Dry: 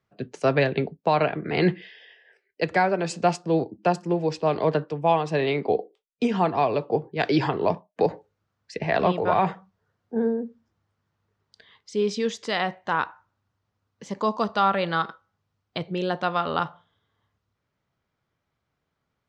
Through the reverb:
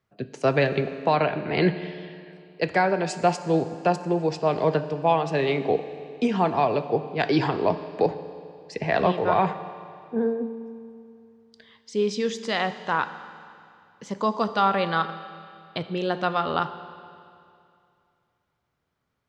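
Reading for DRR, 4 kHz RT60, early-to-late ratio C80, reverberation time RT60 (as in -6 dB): 11.0 dB, 2.4 s, 13.0 dB, 2.5 s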